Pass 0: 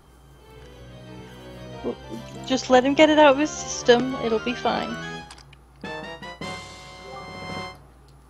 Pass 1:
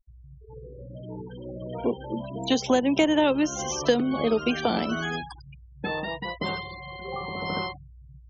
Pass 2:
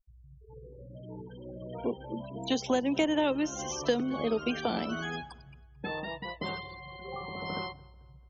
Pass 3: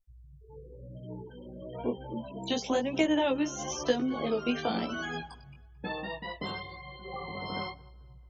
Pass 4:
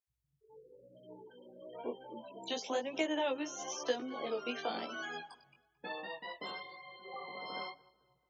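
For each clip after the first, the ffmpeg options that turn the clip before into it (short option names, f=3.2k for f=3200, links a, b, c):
-filter_complex "[0:a]afftfilt=real='re*gte(hypot(re,im),0.02)':imag='im*gte(hypot(re,im),0.02)':win_size=1024:overlap=0.75,acrossover=split=150|370|4100[a][b][c][d];[a]acompressor=threshold=-49dB:ratio=4[e];[b]acompressor=threshold=-28dB:ratio=4[f];[c]acompressor=threshold=-32dB:ratio=4[g];[d]acompressor=threshold=-41dB:ratio=4[h];[e][f][g][h]amix=inputs=4:normalize=0,volume=5dB"
-filter_complex "[0:a]asplit=2[a][b];[b]adelay=220,lowpass=f=4.1k:p=1,volume=-23dB,asplit=2[c][d];[d]adelay=220,lowpass=f=4.1k:p=1,volume=0.47,asplit=2[e][f];[f]adelay=220,lowpass=f=4.1k:p=1,volume=0.47[g];[a][c][e][g]amix=inputs=4:normalize=0,volume=-6dB"
-af "flanger=delay=15.5:depth=5.3:speed=1,volume=3dB"
-af "highpass=380,volume=-5dB"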